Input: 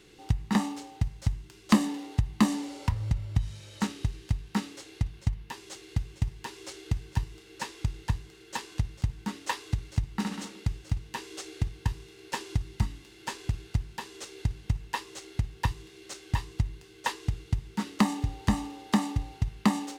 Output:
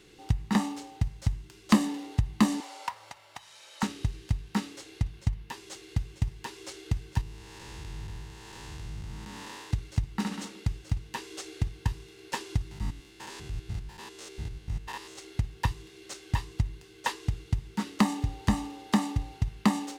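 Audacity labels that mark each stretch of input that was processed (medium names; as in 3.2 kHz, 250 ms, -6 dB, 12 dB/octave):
2.600000	3.830000	resonant high-pass 830 Hz, resonance Q 1.7
7.210000	9.710000	spectral blur width 351 ms
12.710000	15.190000	spectrogram pixelated in time every 100 ms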